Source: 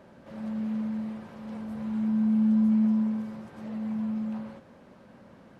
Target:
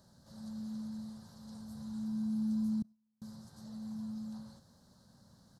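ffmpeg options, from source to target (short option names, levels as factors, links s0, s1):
-filter_complex "[0:a]asettb=1/sr,asplit=3[s0][s1][s2];[s0]atrim=end=2.824[s3];[s1]atrim=start=2.82:end=3.22,asetpts=PTS-STARTPTS,afade=t=in:d=0.004:c=qsin,afade=t=out:st=0.396:d=0.004:c=qsin,agate=range=0.00794:threshold=0.112:ratio=16:detection=peak[s4];[s2]atrim=start=3.216[s5];[s3][s4]acrossfade=d=0.004:c1=hsin:c2=qsin[s6];[s6][s5]acrossfade=d=0.004:c1=qsin:c2=hsin,firequalizer=gain_entry='entry(120,0);entry(320,-15);entry(490,-15);entry(770,-10);entry(1600,-11);entry(2400,-26);entry(4100,9)':delay=0.05:min_phase=1,volume=0.668"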